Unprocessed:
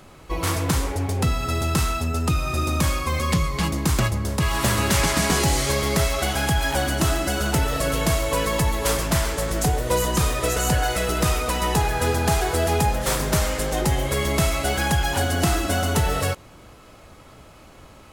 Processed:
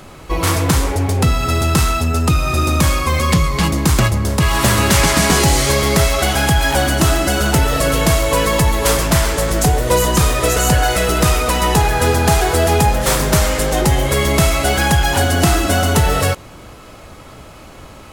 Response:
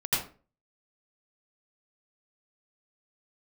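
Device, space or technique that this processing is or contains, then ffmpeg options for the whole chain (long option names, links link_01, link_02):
parallel distortion: -filter_complex "[0:a]asplit=2[link_01][link_02];[link_02]asoftclip=type=hard:threshold=-28.5dB,volume=-9.5dB[link_03];[link_01][link_03]amix=inputs=2:normalize=0,volume=6.5dB"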